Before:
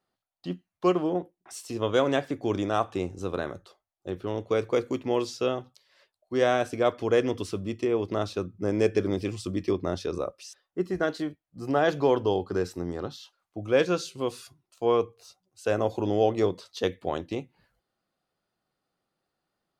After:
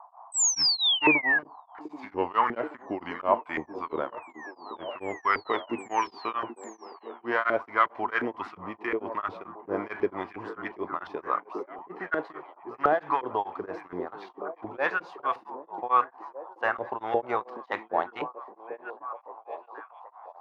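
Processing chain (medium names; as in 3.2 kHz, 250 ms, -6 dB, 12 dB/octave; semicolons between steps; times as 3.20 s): gliding tape speed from 82% -> 112%; graphic EQ 500/1000/2000/8000 Hz -9/+6/+11/-9 dB; waveshaping leveller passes 1; painted sound rise, 11.55–11.95 s, 420–1300 Hz -38 dBFS; LFO band-pass saw up 2.8 Hz 410–1500 Hz; painted sound fall, 0.32–1.39 s, 1.6–8.3 kHz -27 dBFS; band noise 690–1100 Hz -53 dBFS; on a send: repeats whose band climbs or falls 780 ms, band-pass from 280 Hz, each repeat 0.7 oct, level -7.5 dB; on the sum: tremolo of two beating tones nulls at 4.5 Hz; trim +5.5 dB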